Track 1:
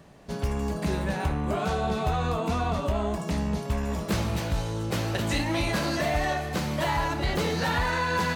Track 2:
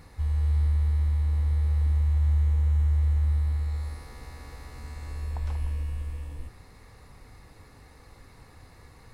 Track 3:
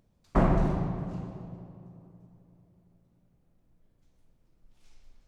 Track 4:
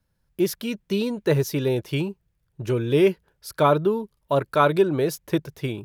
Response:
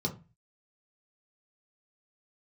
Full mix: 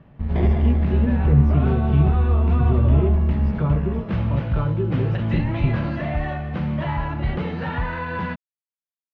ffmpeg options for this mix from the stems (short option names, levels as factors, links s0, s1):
-filter_complex "[0:a]volume=0.75,asplit=2[s0][s1];[s1]volume=0.106[s2];[1:a]acrusher=bits=3:mix=0:aa=0.5,volume=0.596[s3];[2:a]highpass=530,acrusher=samples=32:mix=1:aa=0.000001,volume=0.794[s4];[3:a]acompressor=threshold=0.0398:ratio=3,volume=0.631,asplit=2[s5][s6];[s6]volume=0.376[s7];[4:a]atrim=start_sample=2205[s8];[s2][s7]amix=inputs=2:normalize=0[s9];[s9][s8]afir=irnorm=-1:irlink=0[s10];[s0][s3][s4][s5][s10]amix=inputs=5:normalize=0,lowpass=f=3000:w=0.5412,lowpass=f=3000:w=1.3066,lowshelf=f=310:g=7.5"